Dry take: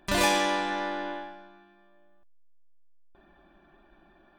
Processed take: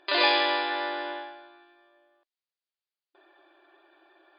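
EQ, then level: brick-wall FIR band-pass 300–5000 Hz; high shelf 3200 Hz +9.5 dB; 0.0 dB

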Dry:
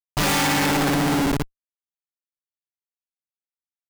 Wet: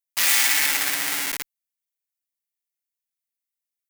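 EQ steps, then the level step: differentiator; bell 2000 Hz +9 dB 0.84 oct; +5.5 dB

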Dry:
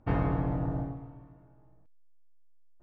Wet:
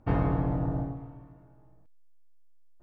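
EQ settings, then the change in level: dynamic EQ 2200 Hz, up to -3 dB, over -54 dBFS, Q 0.94; +2.0 dB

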